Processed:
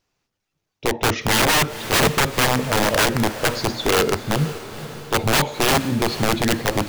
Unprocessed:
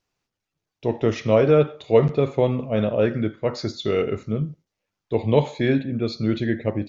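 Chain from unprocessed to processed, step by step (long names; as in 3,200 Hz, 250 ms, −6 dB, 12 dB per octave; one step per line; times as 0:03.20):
wrap-around overflow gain 16 dB
feedback delay with all-pass diffusion 489 ms, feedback 56%, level −13.5 dB
level +4.5 dB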